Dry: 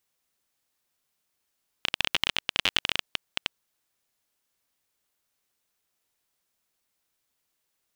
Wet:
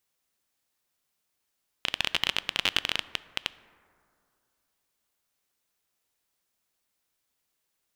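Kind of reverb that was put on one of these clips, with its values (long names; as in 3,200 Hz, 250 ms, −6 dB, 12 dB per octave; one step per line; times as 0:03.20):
dense smooth reverb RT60 2.5 s, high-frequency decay 0.3×, DRR 16 dB
level −1 dB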